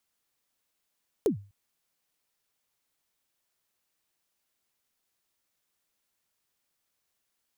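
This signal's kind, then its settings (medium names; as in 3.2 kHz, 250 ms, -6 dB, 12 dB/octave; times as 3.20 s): kick drum length 0.25 s, from 480 Hz, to 100 Hz, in 109 ms, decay 0.35 s, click on, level -17.5 dB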